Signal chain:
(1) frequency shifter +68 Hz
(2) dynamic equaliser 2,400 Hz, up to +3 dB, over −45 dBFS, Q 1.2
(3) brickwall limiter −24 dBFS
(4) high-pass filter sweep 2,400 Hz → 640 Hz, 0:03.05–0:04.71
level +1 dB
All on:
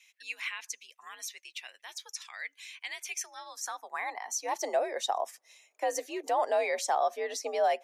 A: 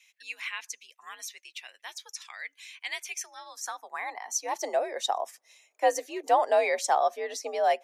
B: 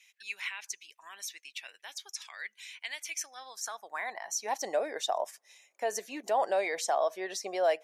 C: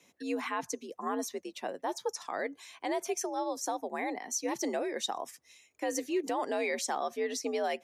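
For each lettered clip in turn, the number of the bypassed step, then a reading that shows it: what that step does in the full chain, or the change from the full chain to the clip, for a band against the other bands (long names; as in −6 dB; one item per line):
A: 3, change in crest factor +3.5 dB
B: 1, 1 kHz band −2.0 dB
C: 4, 250 Hz band +14.0 dB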